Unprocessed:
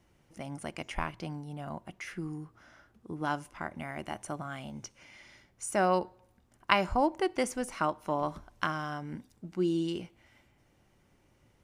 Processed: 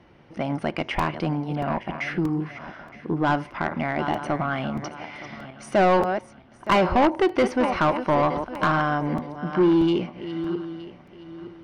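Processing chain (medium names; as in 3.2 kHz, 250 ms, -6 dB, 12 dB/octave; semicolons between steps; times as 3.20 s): backward echo that repeats 459 ms, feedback 50%, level -13 dB; Savitzky-Golay filter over 15 samples; bass shelf 370 Hz +11.5 dB; overdrive pedal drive 25 dB, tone 2.1 kHz, clips at -6 dBFS; crackling interface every 0.63 s, samples 128, repeat, from 0.99 s; trim -3 dB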